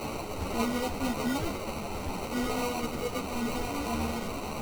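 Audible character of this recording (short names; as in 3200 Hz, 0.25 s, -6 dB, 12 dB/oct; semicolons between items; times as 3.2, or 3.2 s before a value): a quantiser's noise floor 6-bit, dither triangular; phasing stages 6, 3.9 Hz, lowest notch 590–1200 Hz; aliases and images of a low sample rate 1700 Hz, jitter 0%; a shimmering, thickened sound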